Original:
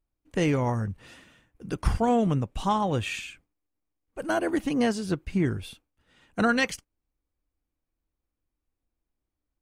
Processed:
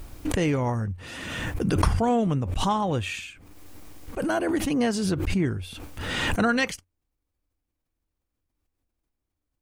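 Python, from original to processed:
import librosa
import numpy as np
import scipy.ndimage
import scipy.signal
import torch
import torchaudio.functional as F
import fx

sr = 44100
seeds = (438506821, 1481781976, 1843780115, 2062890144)

y = fx.peak_eq(x, sr, hz=90.0, db=7.5, octaves=0.21)
y = fx.pre_swell(y, sr, db_per_s=28.0)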